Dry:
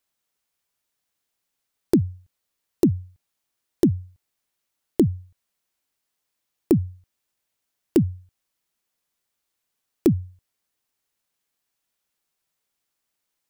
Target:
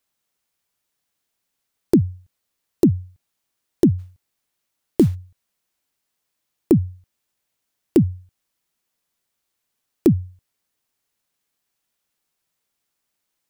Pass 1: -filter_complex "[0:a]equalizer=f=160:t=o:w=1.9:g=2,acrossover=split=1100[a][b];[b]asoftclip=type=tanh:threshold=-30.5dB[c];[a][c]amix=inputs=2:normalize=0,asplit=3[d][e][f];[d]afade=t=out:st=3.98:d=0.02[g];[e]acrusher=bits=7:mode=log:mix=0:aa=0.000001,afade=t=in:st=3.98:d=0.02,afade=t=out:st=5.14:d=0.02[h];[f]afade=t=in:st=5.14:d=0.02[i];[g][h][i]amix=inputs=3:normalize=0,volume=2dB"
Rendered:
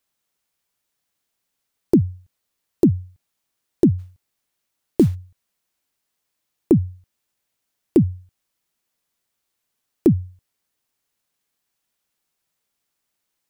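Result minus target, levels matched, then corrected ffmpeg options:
soft clip: distortion +11 dB
-filter_complex "[0:a]equalizer=f=160:t=o:w=1.9:g=2,acrossover=split=1100[a][b];[b]asoftclip=type=tanh:threshold=-20dB[c];[a][c]amix=inputs=2:normalize=0,asplit=3[d][e][f];[d]afade=t=out:st=3.98:d=0.02[g];[e]acrusher=bits=7:mode=log:mix=0:aa=0.000001,afade=t=in:st=3.98:d=0.02,afade=t=out:st=5.14:d=0.02[h];[f]afade=t=in:st=5.14:d=0.02[i];[g][h][i]amix=inputs=3:normalize=0,volume=2dB"

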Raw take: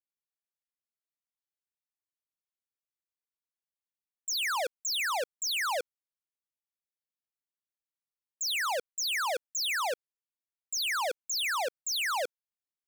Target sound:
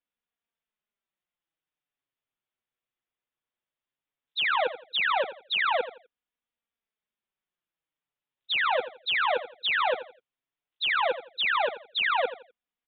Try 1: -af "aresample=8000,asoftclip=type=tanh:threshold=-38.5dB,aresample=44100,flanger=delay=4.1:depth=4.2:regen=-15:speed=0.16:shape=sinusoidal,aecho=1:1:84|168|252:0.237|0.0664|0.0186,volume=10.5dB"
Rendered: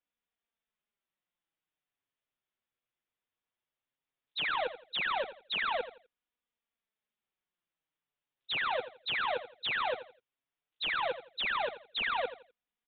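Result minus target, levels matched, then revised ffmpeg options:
soft clip: distortion +13 dB
-af "aresample=8000,asoftclip=type=tanh:threshold=-27.5dB,aresample=44100,flanger=delay=4.1:depth=4.2:regen=-15:speed=0.16:shape=sinusoidal,aecho=1:1:84|168|252:0.237|0.0664|0.0186,volume=10.5dB"

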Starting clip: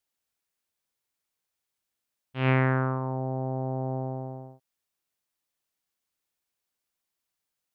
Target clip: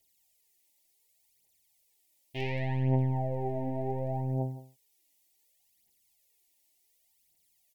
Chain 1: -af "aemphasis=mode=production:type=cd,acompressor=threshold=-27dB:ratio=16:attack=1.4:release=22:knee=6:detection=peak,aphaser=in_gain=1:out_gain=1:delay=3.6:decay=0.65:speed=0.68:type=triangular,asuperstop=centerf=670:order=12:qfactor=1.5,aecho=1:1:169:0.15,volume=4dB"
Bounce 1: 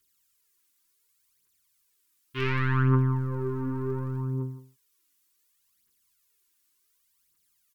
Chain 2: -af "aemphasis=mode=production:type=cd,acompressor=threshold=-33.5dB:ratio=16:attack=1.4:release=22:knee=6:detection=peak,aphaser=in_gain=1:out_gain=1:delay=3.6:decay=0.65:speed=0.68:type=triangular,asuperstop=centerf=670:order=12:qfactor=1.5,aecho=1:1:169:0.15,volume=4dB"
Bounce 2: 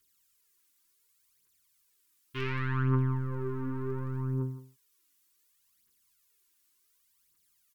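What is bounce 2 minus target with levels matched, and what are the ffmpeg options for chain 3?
500 Hz band -3.0 dB
-af "aemphasis=mode=production:type=cd,acompressor=threshold=-33.5dB:ratio=16:attack=1.4:release=22:knee=6:detection=peak,aphaser=in_gain=1:out_gain=1:delay=3.6:decay=0.65:speed=0.68:type=triangular,asuperstop=centerf=1300:order=12:qfactor=1.5,aecho=1:1:169:0.15,volume=4dB"

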